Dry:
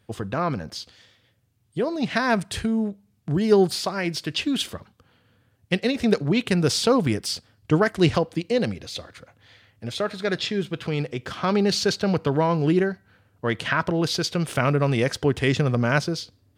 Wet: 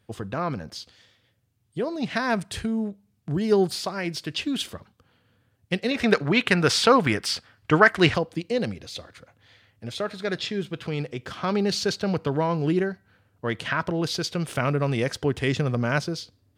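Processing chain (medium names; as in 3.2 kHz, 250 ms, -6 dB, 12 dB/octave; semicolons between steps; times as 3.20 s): 5.91–8.14 s: peaking EQ 1.6 kHz +12.5 dB 2.4 oct; trim -3 dB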